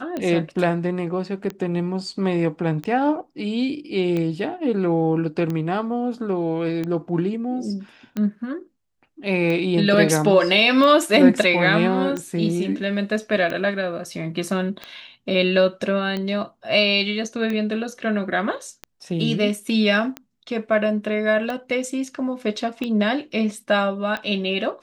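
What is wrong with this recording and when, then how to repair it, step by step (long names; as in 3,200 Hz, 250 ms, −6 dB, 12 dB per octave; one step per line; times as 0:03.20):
scratch tick 45 rpm −15 dBFS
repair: click removal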